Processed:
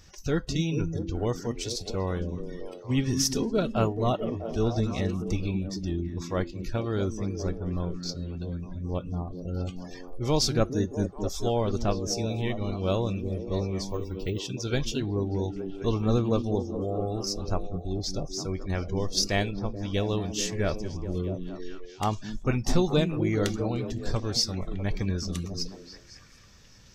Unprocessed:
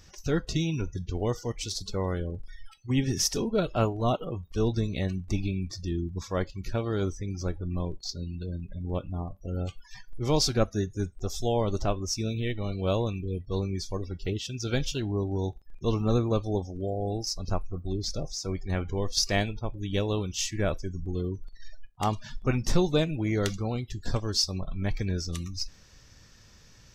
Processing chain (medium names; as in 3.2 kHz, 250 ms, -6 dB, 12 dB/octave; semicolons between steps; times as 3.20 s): 13.89–14.39 s: careless resampling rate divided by 2×, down none, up hold; on a send: repeats whose band climbs or falls 216 ms, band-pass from 210 Hz, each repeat 0.7 oct, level -3 dB